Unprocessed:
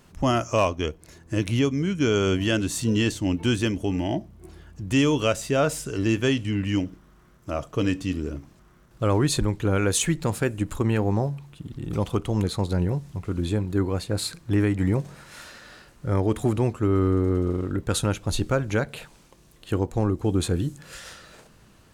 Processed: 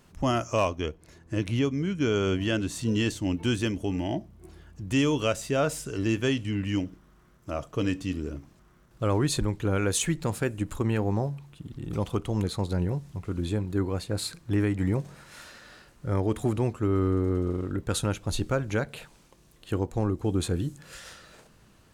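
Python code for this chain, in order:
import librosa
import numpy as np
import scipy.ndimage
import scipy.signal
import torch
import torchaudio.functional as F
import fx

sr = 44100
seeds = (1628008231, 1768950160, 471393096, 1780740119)

y = fx.high_shelf(x, sr, hz=6100.0, db=-7.0, at=(0.8, 2.86))
y = F.gain(torch.from_numpy(y), -3.5).numpy()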